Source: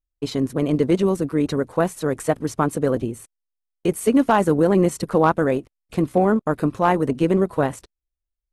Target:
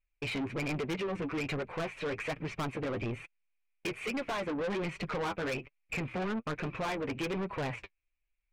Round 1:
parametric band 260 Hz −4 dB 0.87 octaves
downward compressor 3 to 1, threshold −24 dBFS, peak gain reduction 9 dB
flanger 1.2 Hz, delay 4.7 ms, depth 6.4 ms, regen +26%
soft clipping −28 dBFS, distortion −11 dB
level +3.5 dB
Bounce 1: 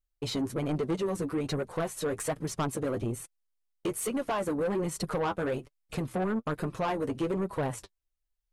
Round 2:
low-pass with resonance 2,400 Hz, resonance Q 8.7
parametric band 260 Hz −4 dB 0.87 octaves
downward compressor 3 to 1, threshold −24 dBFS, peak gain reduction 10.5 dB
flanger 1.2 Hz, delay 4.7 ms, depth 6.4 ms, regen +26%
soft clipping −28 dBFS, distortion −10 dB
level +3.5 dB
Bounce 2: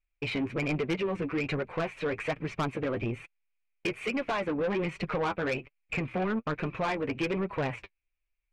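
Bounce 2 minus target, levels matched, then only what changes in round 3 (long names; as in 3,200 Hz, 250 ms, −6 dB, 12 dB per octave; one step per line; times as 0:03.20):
soft clipping: distortion −4 dB
change: soft clipping −34.5 dBFS, distortion −6 dB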